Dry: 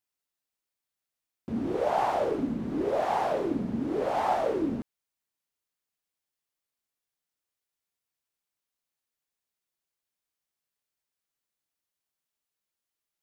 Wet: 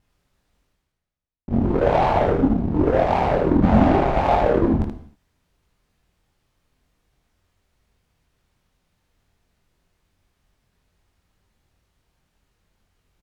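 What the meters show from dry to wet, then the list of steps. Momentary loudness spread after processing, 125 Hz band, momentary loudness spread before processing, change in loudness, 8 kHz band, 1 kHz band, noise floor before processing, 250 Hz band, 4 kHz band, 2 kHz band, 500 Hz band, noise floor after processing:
6 LU, +18.5 dB, 8 LU, +10.0 dB, no reading, +8.0 dB, under -85 dBFS, +11.5 dB, +7.0 dB, +10.0 dB, +9.0 dB, -75 dBFS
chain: spectral replace 3.65–4.09 s, 420–8700 Hz after; vibrato 7.4 Hz 78 cents; bass shelf 80 Hz +6.5 dB; reverse; upward compressor, threshold -30 dBFS; reverse; Chebyshev shaper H 7 -18 dB, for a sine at -14.5 dBFS; RIAA curve playback; on a send: early reflections 23 ms -3.5 dB, 78 ms -4 dB; on the sum: gated-style reverb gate 270 ms falling, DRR 9.5 dB; trim +4.5 dB

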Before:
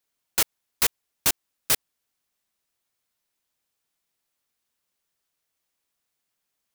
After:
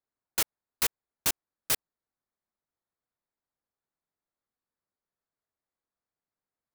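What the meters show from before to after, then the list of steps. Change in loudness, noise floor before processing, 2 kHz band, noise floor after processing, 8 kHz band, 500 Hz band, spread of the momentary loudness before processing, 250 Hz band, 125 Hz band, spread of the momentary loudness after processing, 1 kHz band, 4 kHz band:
-5.5 dB, -81 dBFS, -5.0 dB, under -85 dBFS, -5.5 dB, -5.0 dB, 3 LU, -5.0 dB, -5.0 dB, 3 LU, -5.0 dB, -5.5 dB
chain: local Wiener filter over 15 samples; trim -5 dB

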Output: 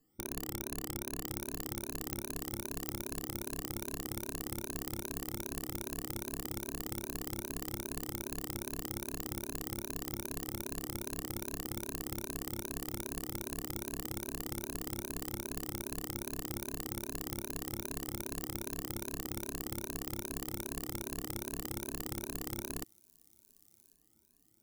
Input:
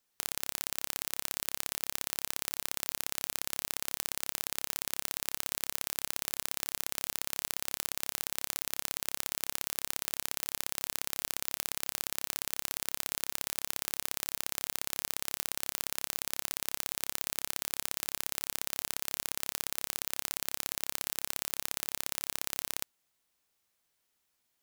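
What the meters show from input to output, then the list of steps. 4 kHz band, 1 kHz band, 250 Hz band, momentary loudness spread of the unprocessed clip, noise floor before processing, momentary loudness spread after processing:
-9.5 dB, -3.5 dB, +11.0 dB, 1 LU, -79 dBFS, 0 LU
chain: drifting ripple filter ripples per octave 1.5, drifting +2.5 Hz, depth 21 dB; saturation -16 dBFS, distortion -3 dB; FFT filter 130 Hz 0 dB, 330 Hz +3 dB, 530 Hz -14 dB, 3.3 kHz -25 dB, 12 kHz -19 dB; feedback echo behind a high-pass 1093 ms, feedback 48%, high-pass 5.1 kHz, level -21.5 dB; trim +14 dB

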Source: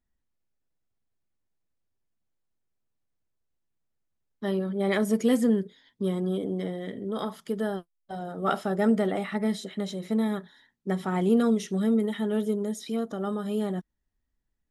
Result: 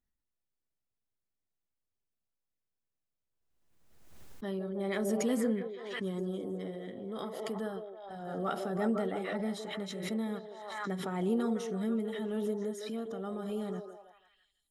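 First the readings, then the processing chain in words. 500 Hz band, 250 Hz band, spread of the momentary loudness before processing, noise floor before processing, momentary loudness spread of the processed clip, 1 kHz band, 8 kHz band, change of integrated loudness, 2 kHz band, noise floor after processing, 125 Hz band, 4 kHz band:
-6.0 dB, -8.0 dB, 11 LU, -79 dBFS, 10 LU, -6.5 dB, -3.5 dB, -7.5 dB, -5.5 dB, under -85 dBFS, -8.0 dB, -5.0 dB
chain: on a send: repeats whose band climbs or falls 163 ms, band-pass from 490 Hz, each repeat 0.7 oct, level -3 dB; on the sum: swell ahead of each attack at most 41 dB/s; trim -9 dB

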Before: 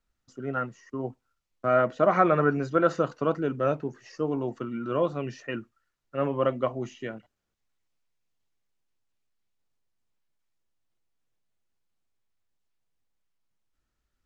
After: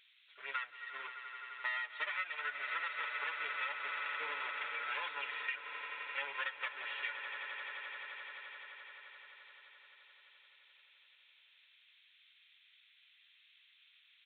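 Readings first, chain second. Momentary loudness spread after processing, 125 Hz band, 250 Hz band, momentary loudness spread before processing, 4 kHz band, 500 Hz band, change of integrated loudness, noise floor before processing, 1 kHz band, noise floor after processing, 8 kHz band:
15 LU, under -40 dB, under -40 dB, 15 LU, +4.5 dB, -28.5 dB, -12.5 dB, -81 dBFS, -12.5 dB, -67 dBFS, no reading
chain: comb filter that takes the minimum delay 2.1 ms; comb 6.9 ms, depth 76%; added noise violet -51 dBFS; resonant high-pass 2.3 kHz, resonance Q 1.6; on a send: echo with a slow build-up 86 ms, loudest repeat 8, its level -18 dB; on the sum: resampled via 8 kHz; band-stop 2.9 kHz, Q 20; compression 20:1, threshold -39 dBFS, peak gain reduction 22 dB; trim +4 dB

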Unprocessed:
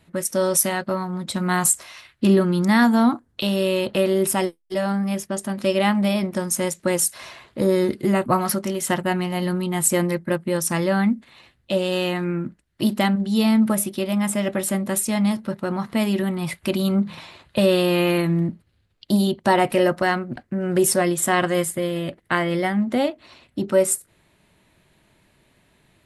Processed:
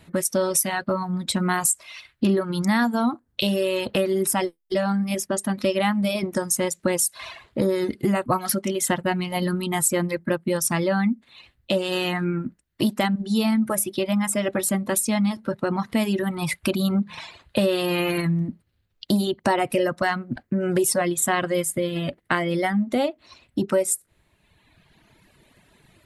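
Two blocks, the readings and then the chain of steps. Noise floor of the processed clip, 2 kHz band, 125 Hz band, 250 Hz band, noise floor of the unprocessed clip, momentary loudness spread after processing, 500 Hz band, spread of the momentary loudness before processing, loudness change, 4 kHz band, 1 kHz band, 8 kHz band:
-69 dBFS, -1.5 dB, -2.5 dB, -2.5 dB, -64 dBFS, 5 LU, -2.5 dB, 8 LU, -2.0 dB, -0.5 dB, -2.0 dB, -1.0 dB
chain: reverb removal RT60 1.4 s; compression 2.5:1, threshold -28 dBFS, peak gain reduction 10.5 dB; trim +6 dB

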